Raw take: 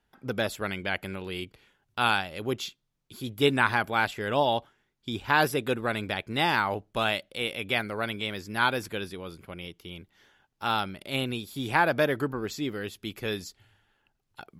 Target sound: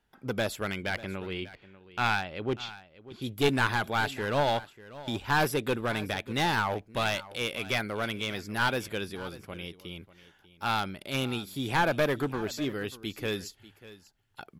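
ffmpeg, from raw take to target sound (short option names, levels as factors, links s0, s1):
-filter_complex "[0:a]asettb=1/sr,asplit=3[s0][s1][s2];[s0]atrim=end=0.924[s3];[s1]atrim=start=0.92:end=3.22,asetpts=PTS-STARTPTS,afade=t=in:d=0.004:c=qsin,afade=t=out:st=2.296:d=0.004:c=qsin,lowpass=3500[s4];[s2]atrim=start=3.216[s5];[s3][s4]acrossfade=d=0.004:c1=hsin:c2=qsin[s6];[s6][s5]acrossfade=d=0.004:c1=qsin:c2=hsin,aeval=exprs='clip(val(0),-1,0.0631)':c=same,aecho=1:1:592:0.133"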